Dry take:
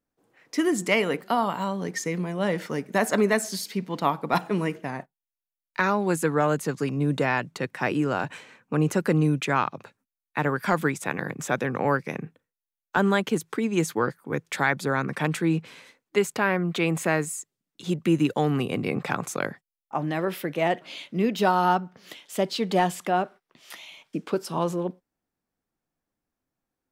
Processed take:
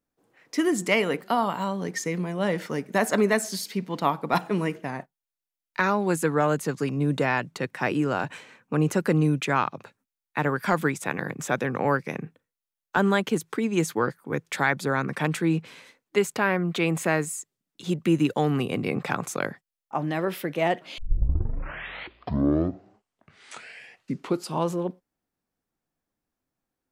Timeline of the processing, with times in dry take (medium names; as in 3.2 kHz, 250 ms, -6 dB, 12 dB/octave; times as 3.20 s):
20.98 s: tape start 3.72 s